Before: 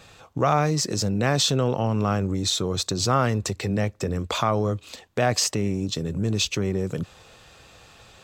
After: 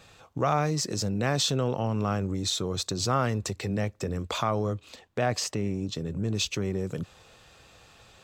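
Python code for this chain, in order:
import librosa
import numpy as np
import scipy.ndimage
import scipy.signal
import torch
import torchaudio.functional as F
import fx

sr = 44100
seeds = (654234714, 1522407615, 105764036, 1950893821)

y = fx.high_shelf(x, sr, hz=4600.0, db=-6.0, at=(4.73, 6.35))
y = y * librosa.db_to_amplitude(-4.5)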